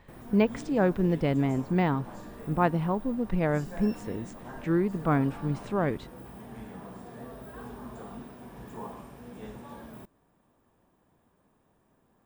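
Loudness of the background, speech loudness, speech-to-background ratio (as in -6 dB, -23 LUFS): -44.0 LUFS, -28.0 LUFS, 16.0 dB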